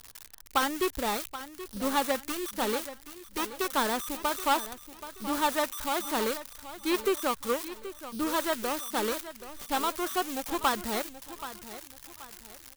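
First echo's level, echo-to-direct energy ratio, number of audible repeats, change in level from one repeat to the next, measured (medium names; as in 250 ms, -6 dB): -13.5 dB, -13.0 dB, 3, -9.0 dB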